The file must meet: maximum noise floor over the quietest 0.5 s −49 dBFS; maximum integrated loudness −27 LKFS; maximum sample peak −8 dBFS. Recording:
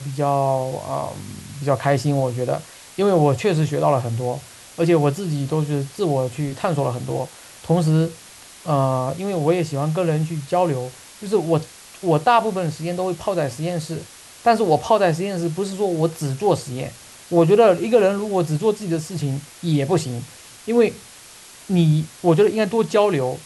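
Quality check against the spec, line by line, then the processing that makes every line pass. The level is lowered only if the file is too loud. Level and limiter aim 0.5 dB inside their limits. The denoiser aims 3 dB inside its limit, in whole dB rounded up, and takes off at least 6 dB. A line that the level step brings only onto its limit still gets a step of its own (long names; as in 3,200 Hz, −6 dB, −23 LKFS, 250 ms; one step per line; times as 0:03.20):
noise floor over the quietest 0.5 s −43 dBFS: out of spec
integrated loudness −20.5 LKFS: out of spec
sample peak −4.5 dBFS: out of spec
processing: level −7 dB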